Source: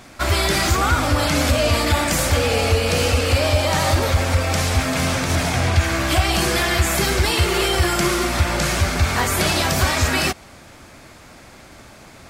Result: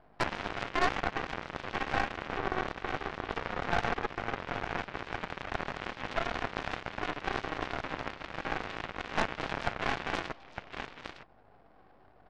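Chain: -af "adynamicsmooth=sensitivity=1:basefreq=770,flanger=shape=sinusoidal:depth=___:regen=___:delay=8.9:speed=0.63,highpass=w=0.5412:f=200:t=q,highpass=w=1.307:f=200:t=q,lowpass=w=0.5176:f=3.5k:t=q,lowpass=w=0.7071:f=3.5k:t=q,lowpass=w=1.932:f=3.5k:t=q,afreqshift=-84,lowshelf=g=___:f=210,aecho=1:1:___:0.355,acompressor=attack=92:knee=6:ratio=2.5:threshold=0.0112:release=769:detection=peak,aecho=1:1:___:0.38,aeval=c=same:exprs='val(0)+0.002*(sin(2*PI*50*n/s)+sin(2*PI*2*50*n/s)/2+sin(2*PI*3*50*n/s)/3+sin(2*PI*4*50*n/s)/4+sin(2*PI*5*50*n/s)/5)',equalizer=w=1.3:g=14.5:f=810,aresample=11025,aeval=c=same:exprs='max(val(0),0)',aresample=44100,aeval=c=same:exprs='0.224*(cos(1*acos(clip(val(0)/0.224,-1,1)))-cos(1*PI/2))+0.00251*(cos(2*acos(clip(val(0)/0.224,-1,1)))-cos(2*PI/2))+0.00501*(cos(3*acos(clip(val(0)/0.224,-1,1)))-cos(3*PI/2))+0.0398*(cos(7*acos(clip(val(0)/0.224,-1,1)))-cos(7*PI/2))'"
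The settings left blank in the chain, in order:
2, -50, 3.5, 908, 2.7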